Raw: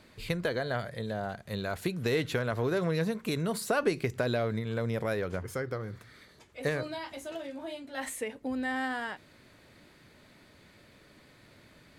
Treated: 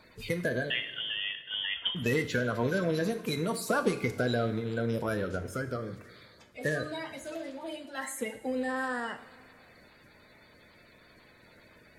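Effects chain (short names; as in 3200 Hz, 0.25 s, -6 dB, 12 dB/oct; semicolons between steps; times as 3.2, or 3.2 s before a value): bin magnitudes rounded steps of 30 dB; 0.7–1.95 inverted band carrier 3400 Hz; two-slope reverb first 0.55 s, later 2.5 s, from -15 dB, DRR 7 dB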